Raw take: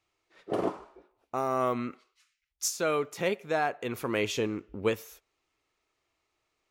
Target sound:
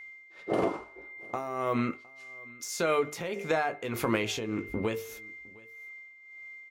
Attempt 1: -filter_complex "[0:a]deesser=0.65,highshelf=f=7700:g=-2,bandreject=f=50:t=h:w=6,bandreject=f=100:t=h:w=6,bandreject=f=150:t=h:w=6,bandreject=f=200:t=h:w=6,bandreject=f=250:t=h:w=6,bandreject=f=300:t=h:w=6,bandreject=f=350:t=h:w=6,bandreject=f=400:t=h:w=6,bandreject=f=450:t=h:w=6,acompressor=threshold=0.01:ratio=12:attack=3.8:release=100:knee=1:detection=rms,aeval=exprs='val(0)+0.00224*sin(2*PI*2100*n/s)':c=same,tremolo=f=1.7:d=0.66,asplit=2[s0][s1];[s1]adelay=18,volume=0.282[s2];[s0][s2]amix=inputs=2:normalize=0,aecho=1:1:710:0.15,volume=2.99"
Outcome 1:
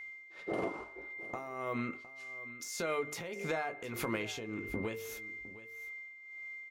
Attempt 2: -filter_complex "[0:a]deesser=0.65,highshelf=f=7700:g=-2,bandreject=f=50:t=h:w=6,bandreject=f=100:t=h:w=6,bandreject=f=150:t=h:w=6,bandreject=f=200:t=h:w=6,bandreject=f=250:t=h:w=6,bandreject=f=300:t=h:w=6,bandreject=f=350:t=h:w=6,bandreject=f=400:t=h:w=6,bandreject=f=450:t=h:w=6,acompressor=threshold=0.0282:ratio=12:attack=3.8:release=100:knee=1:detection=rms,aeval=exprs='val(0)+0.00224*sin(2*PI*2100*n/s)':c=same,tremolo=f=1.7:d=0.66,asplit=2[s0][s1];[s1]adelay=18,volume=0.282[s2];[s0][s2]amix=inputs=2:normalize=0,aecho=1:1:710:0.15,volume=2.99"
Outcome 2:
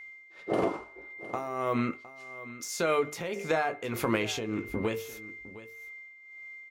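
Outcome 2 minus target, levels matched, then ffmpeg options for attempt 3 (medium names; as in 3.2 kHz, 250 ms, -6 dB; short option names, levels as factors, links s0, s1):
echo-to-direct +8 dB
-filter_complex "[0:a]deesser=0.65,highshelf=f=7700:g=-2,bandreject=f=50:t=h:w=6,bandreject=f=100:t=h:w=6,bandreject=f=150:t=h:w=6,bandreject=f=200:t=h:w=6,bandreject=f=250:t=h:w=6,bandreject=f=300:t=h:w=6,bandreject=f=350:t=h:w=6,bandreject=f=400:t=h:w=6,bandreject=f=450:t=h:w=6,acompressor=threshold=0.0282:ratio=12:attack=3.8:release=100:knee=1:detection=rms,aeval=exprs='val(0)+0.00224*sin(2*PI*2100*n/s)':c=same,tremolo=f=1.7:d=0.66,asplit=2[s0][s1];[s1]adelay=18,volume=0.282[s2];[s0][s2]amix=inputs=2:normalize=0,aecho=1:1:710:0.0596,volume=2.99"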